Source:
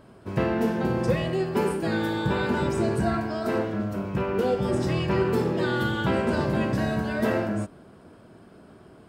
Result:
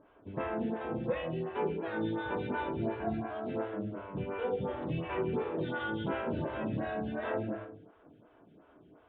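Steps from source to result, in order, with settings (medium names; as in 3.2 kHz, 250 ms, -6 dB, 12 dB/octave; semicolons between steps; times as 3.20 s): Chebyshev low-pass 3.6 kHz, order 6; FDN reverb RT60 0.85 s, low-frequency decay 0.7×, high-frequency decay 0.75×, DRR 3.5 dB; lamp-driven phase shifter 2.8 Hz; trim -7.5 dB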